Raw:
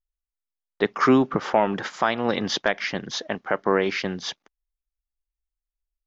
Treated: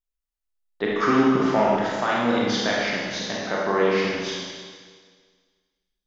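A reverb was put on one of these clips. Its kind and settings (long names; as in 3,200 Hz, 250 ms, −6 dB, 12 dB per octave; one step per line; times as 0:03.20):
four-comb reverb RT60 1.7 s, combs from 26 ms, DRR −5 dB
level −5 dB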